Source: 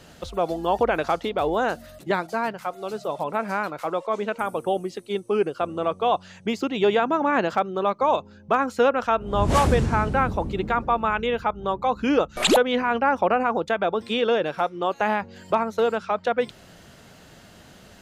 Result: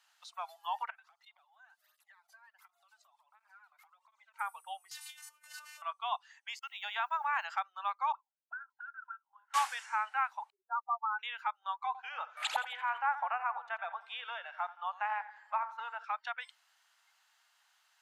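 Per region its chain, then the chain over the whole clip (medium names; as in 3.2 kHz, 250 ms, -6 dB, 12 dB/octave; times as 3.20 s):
0.90–4.34 s: Chebyshev band-stop 250–560 Hz + compression 12:1, threshold -37 dBFS + cancelling through-zero flanger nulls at 1.4 Hz, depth 2.4 ms
4.91–5.82 s: one-bit delta coder 64 kbps, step -33.5 dBFS + compressor with a negative ratio -31 dBFS + robot voice 301 Hz
6.59–7.45 s: expander -24 dBFS + word length cut 10-bit, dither none
8.12–9.54 s: comb of notches 1.2 kHz + auto-wah 410–1500 Hz, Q 20, up, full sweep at -18.5 dBFS
10.50–11.19 s: spectral contrast enhancement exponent 3.6 + low-pass 1.5 kHz + upward compressor, threshold -31 dBFS
11.86–16.04 s: tilt EQ -3.5 dB/octave + thinning echo 85 ms, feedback 64%, high-pass 180 Hz, level -13 dB
whole clip: spectral noise reduction 10 dB; steep high-pass 830 Hz 48 dB/octave; trim -8 dB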